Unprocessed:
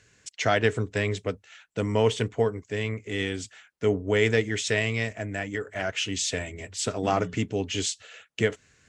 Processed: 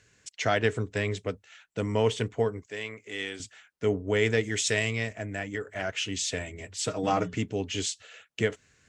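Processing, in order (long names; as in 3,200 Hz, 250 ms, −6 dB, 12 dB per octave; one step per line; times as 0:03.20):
0:02.66–0:03.40: high-pass filter 620 Hz 6 dB per octave
0:04.43–0:04.91: high-shelf EQ 6,200 Hz +11.5 dB
0:06.80–0:07.29: comb filter 6.4 ms, depth 51%
level −2.5 dB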